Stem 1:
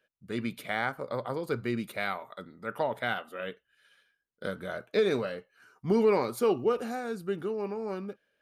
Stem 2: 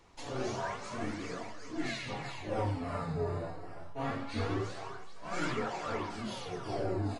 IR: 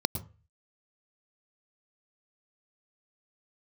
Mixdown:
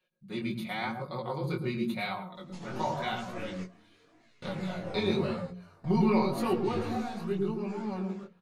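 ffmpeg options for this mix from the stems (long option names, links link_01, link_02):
-filter_complex "[0:a]aecho=1:1:5.5:0.96,volume=-3.5dB,asplit=3[link_01][link_02][link_03];[link_02]volume=-5.5dB[link_04];[1:a]adelay=2350,volume=-1.5dB,afade=type=out:start_time=7.25:duration=0.36:silence=0.251189,asplit=2[link_05][link_06];[link_06]volume=-20.5dB[link_07];[link_03]apad=whole_len=420832[link_08];[link_05][link_08]sidechaingate=range=-24dB:threshold=-53dB:ratio=16:detection=peak[link_09];[2:a]atrim=start_sample=2205[link_10];[link_04][link_10]afir=irnorm=-1:irlink=0[link_11];[link_07]aecho=0:1:361:1[link_12];[link_01][link_09][link_11][link_12]amix=inputs=4:normalize=0,bandreject=frequency=60:width_type=h:width=6,bandreject=frequency=120:width_type=h:width=6,bandreject=frequency=180:width_type=h:width=6,flanger=delay=16.5:depth=7.7:speed=0.91"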